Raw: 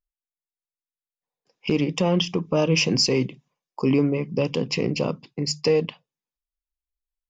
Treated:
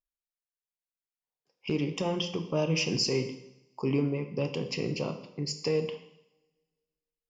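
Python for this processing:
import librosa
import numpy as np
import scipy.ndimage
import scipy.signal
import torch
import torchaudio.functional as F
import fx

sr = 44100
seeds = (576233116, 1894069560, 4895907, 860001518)

y = fx.rev_double_slope(x, sr, seeds[0], early_s=0.79, late_s=2.0, knee_db=-25, drr_db=6.5)
y = F.gain(torch.from_numpy(y), -8.5).numpy()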